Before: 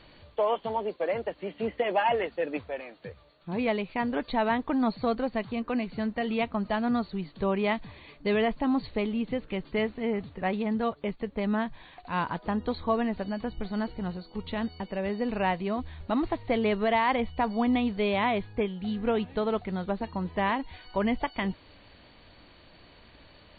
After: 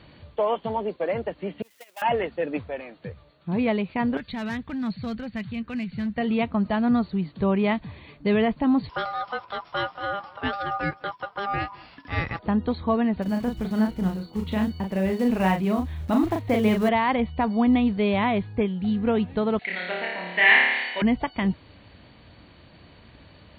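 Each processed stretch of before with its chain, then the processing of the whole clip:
0:01.62–0:02.02: converter with a step at zero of −30 dBFS + noise gate −24 dBFS, range −18 dB + first difference
0:04.17–0:06.18: flat-topped bell 560 Hz −11.5 dB 2.5 octaves + gain into a clipping stage and back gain 30 dB
0:08.89–0:12.39: high-shelf EQ 2,200 Hz +7 dB + ring modulation 1,000 Hz + single-tap delay 205 ms −22.5 dB
0:13.22–0:16.89: one scale factor per block 5 bits + double-tracking delay 37 ms −4.5 dB
0:19.59–0:21.02: band-pass filter 630–3,800 Hz + high shelf with overshoot 1,500 Hz +9 dB, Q 3 + flutter between parallel walls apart 4.8 metres, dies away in 1.1 s
whole clip: high-pass filter 70 Hz; bass and treble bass +8 dB, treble −4 dB; level +2 dB

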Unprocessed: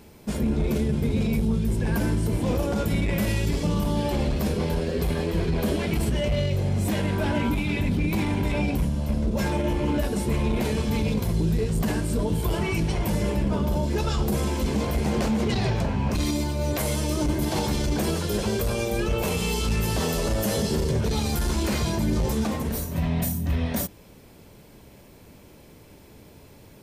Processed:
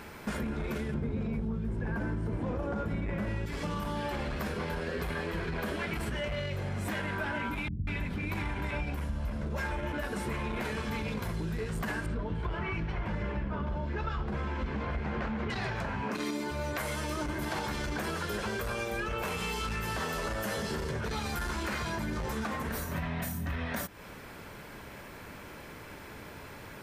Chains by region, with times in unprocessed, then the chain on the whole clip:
0:00.94–0:03.46: low-pass filter 9,500 Hz + tilt shelving filter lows +8 dB, about 1,300 Hz
0:07.68–0:09.93: low-shelf EQ 160 Hz +7 dB + multiband delay without the direct sound lows, highs 190 ms, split 210 Hz
0:12.06–0:15.50: low-pass filter 3,200 Hz + low-shelf EQ 150 Hz +8 dB
0:16.02–0:16.50: steady tone 430 Hz −32 dBFS + high-pass with resonance 230 Hz, resonance Q 1.7
whole clip: parametric band 1,500 Hz +15 dB 1.6 octaves; downward compressor, threshold −32 dBFS

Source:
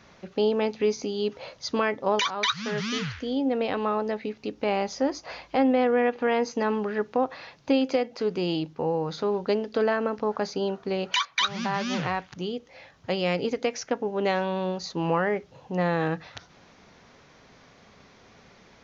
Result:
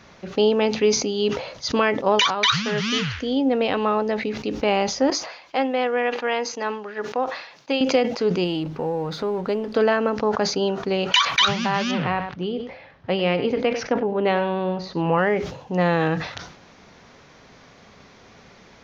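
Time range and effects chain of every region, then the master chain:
0:05.10–0:07.81: high-pass filter 650 Hz 6 dB per octave + expander for the loud parts, over −45 dBFS
0:08.44–0:09.75: mu-law and A-law mismatch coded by mu + low-pass filter 3,000 Hz 6 dB per octave + downward compressor 1.5 to 1, threshold −33 dBFS
0:11.91–0:15.18: high-frequency loss of the air 260 metres + single-tap delay 98 ms −13.5 dB
whole clip: dynamic equaliser 2,900 Hz, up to +5 dB, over −47 dBFS, Q 3.8; level that may fall only so fast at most 84 dB per second; level +5 dB

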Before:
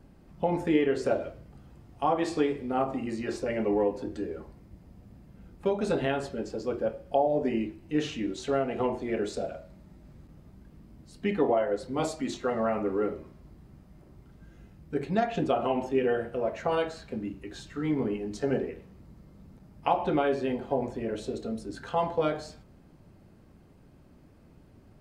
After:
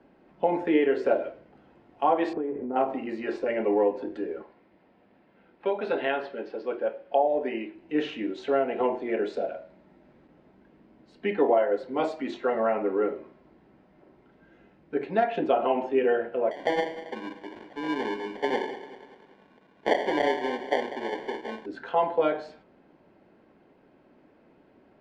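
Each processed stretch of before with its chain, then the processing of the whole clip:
0:02.33–0:02.76: low-pass filter 1,100 Hz + low-shelf EQ 410 Hz +8 dB + downward compressor 8 to 1, threshold −28 dBFS
0:04.42–0:07.75: moving average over 6 samples + spectral tilt +2.5 dB per octave
0:16.51–0:21.66: low-shelf EQ 180 Hz −10 dB + sample-rate reduction 1,300 Hz + feedback echo at a low word length 195 ms, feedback 55%, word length 9 bits, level −13.5 dB
whole clip: Bessel low-pass filter 7,100 Hz; three-way crossover with the lows and the highs turned down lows −23 dB, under 250 Hz, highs −21 dB, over 3,500 Hz; notch filter 1,200 Hz, Q 9.7; level +4 dB

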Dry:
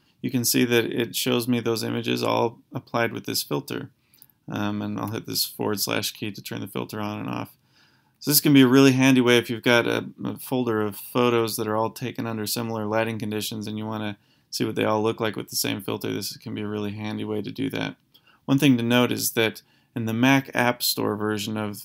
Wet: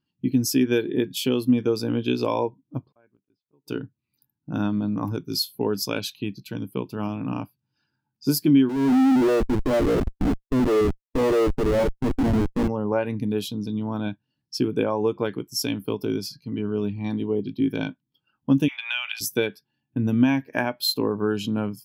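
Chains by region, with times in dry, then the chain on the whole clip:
0:02.86–0:03.67: gate with flip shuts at −20 dBFS, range −34 dB + low-pass filter 2,300 Hz + compressor whose output falls as the input rises −56 dBFS, ratio −0.5
0:08.69–0:12.68: flat-topped band-pass 420 Hz, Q 0.84 + comparator with hysteresis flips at −34 dBFS
0:18.68–0:19.21: elliptic high-pass filter 700 Hz, stop band 50 dB + downward compressor, threshold −34 dBFS + parametric band 2,500 Hz +14 dB 1.6 octaves
whole clip: downward compressor 8 to 1, threshold −21 dBFS; every bin expanded away from the loudest bin 1.5 to 1

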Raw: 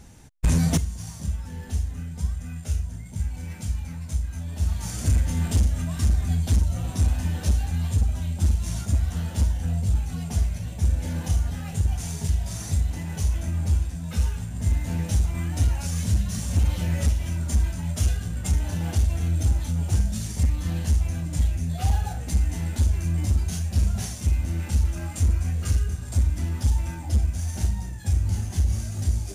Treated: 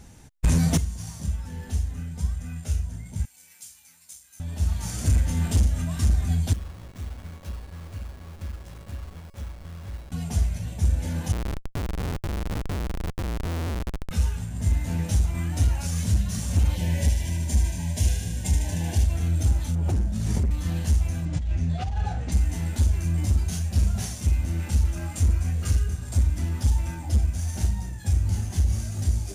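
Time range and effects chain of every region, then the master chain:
0:03.25–0:04.40: high-pass filter 73 Hz + first difference
0:06.53–0:10.12: hold until the input has moved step −27 dBFS + tuned comb filter 560 Hz, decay 0.5 s, mix 80%
0:11.32–0:14.11: downward compressor 5 to 1, threshold −22 dBFS + comparator with hysteresis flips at −25 dBFS
0:16.75–0:19.04: Butterworth band-reject 1,300 Hz, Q 2.6 + feedback echo with a high-pass in the loop 76 ms, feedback 76%, high-pass 910 Hz, level −6 dB
0:19.75–0:20.51: high-shelf EQ 2,300 Hz −11.5 dB + gain into a clipping stage and back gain 20 dB + background raised ahead of every attack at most 24 dB per second
0:21.25–0:22.32: high-frequency loss of the air 120 metres + compressor whose output falls as the input rises −24 dBFS
whole clip: no processing

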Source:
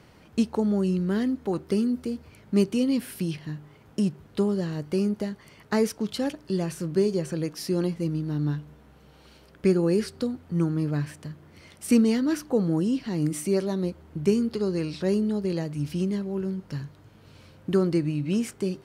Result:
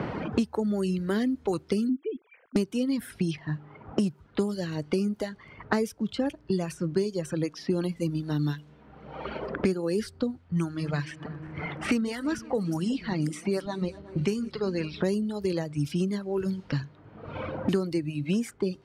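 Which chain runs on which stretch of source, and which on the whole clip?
0:01.89–0:02.56: three sine waves on the formant tracks + volume swells 259 ms
0:10.38–0:15.01: feedback delay that plays each chunk backwards 182 ms, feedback 66%, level −13 dB + parametric band 310 Hz −7 dB 2.6 octaves
whole clip: low-pass that shuts in the quiet parts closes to 1,200 Hz, open at −24 dBFS; reverb reduction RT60 2 s; multiband upward and downward compressor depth 100%

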